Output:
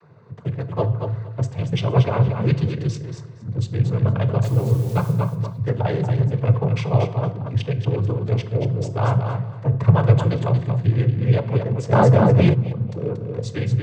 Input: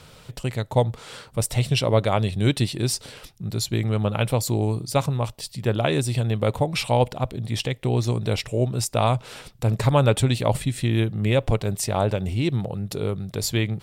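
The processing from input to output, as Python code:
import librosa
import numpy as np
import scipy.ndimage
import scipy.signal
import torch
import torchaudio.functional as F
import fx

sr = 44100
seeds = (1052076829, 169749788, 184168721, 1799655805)

y = fx.wiener(x, sr, points=15)
y = fx.lowpass(y, sr, hz=1100.0, slope=6)
y = fx.peak_eq(y, sr, hz=560.0, db=-12.5, octaves=0.25)
y = y + 0.89 * np.pad(y, (int(1.8 * sr / 1000.0), 0))[:len(y)]
y = fx.noise_vocoder(y, sr, seeds[0], bands=16)
y = fx.quant_dither(y, sr, seeds[1], bits=8, dither='triangular', at=(4.43, 5.11), fade=0.02)
y = fx.echo_feedback(y, sr, ms=232, feedback_pct=17, wet_db=-6.5)
y = fx.room_shoebox(y, sr, seeds[2], volume_m3=330.0, walls='mixed', distance_m=0.34)
y = fx.env_flatten(y, sr, amount_pct=70, at=(11.91, 12.53), fade=0.02)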